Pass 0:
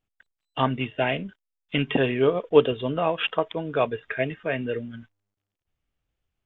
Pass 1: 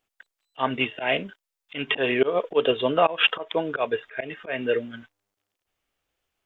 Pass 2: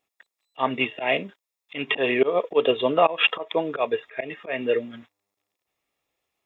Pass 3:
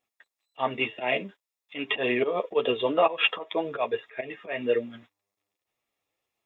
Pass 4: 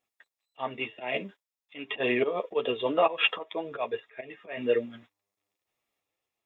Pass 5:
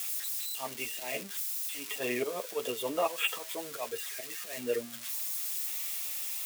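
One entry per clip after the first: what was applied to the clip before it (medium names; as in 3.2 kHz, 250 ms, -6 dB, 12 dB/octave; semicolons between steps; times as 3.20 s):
tone controls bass -15 dB, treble +1 dB; slow attack 177 ms; trim +7.5 dB
comb of notches 1.5 kHz; trim +1.5 dB
flange 1.9 Hz, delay 8 ms, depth 2.4 ms, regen -18%
random-step tremolo
zero-crossing glitches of -22.5 dBFS; trim -6.5 dB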